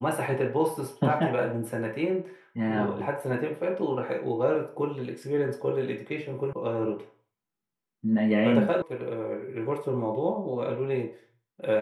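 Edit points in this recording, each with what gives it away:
6.53 sound cut off
8.82 sound cut off

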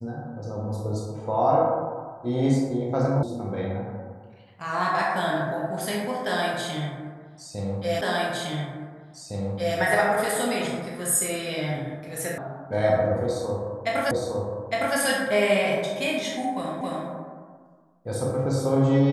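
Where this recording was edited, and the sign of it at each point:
3.23 sound cut off
8.01 repeat of the last 1.76 s
12.38 sound cut off
14.11 repeat of the last 0.86 s
16.81 repeat of the last 0.27 s

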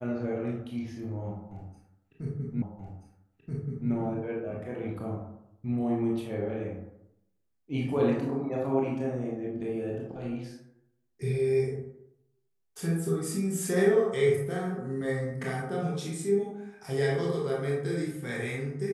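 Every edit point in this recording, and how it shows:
2.62 repeat of the last 1.28 s

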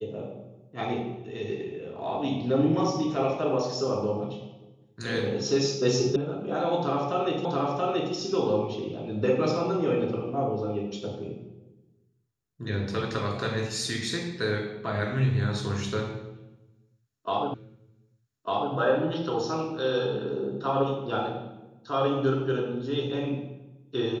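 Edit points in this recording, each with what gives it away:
6.16 sound cut off
7.45 repeat of the last 0.68 s
17.54 repeat of the last 1.2 s

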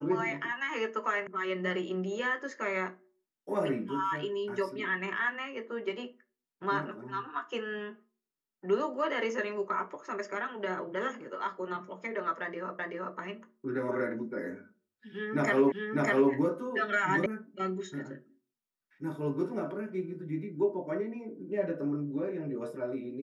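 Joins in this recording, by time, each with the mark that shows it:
1.27 sound cut off
12.79 repeat of the last 0.38 s
15.72 repeat of the last 0.6 s
17.26 sound cut off

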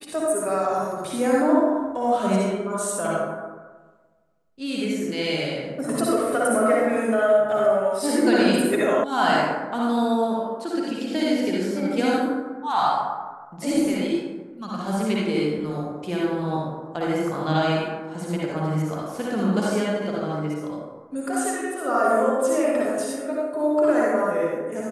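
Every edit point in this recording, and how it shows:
9.04 sound cut off

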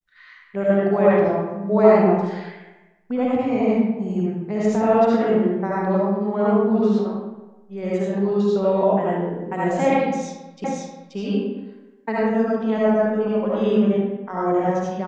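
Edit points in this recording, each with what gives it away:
10.64 repeat of the last 0.53 s

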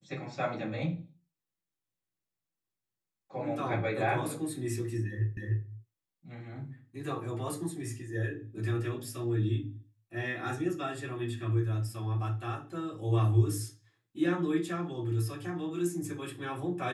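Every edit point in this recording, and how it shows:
5.37 repeat of the last 0.3 s

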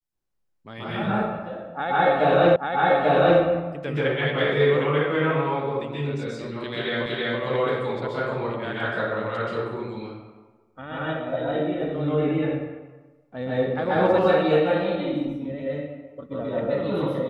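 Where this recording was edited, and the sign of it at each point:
2.56 repeat of the last 0.84 s
7.06 repeat of the last 0.33 s

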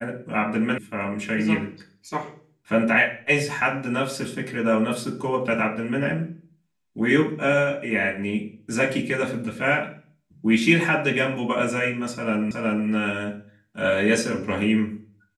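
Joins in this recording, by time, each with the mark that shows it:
0.78 sound cut off
12.51 repeat of the last 0.37 s

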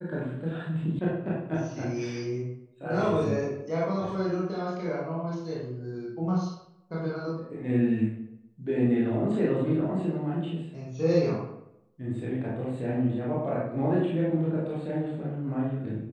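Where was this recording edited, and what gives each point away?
0.99 sound cut off

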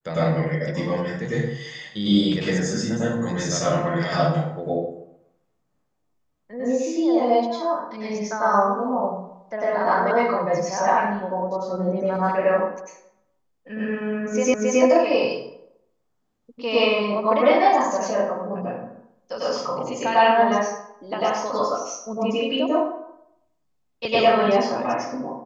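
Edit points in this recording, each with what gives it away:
14.54 repeat of the last 0.27 s

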